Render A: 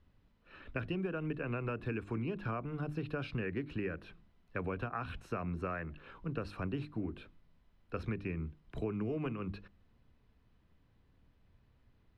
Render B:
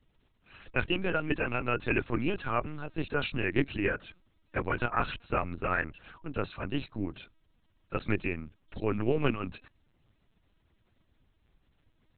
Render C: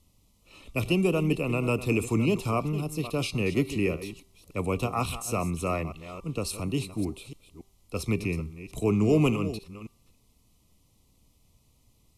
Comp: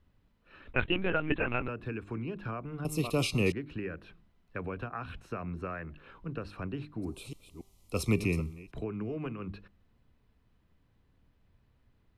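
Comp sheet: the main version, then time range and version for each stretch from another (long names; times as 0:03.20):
A
0:00.73–0:01.68: punch in from B
0:02.85–0:03.52: punch in from C
0:07.13–0:08.61: punch in from C, crossfade 0.24 s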